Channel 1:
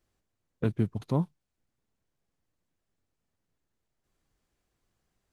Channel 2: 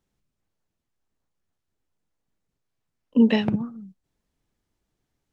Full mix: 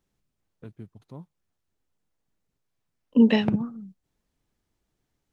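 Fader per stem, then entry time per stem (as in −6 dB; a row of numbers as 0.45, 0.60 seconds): −15.5, 0.0 decibels; 0.00, 0.00 seconds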